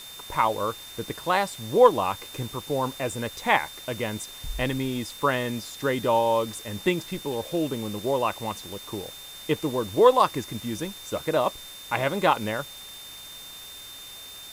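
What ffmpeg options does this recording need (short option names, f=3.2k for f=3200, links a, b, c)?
-af "adeclick=t=4,bandreject=f=3.6k:w=30,afwtdn=0.0063"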